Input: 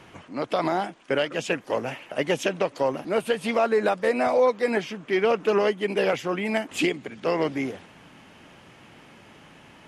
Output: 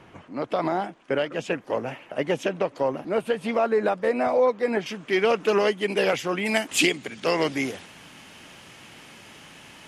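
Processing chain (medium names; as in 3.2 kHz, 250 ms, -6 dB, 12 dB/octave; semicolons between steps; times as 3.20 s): treble shelf 2.5 kHz -7.5 dB, from 4.86 s +6 dB, from 6.46 s +12 dB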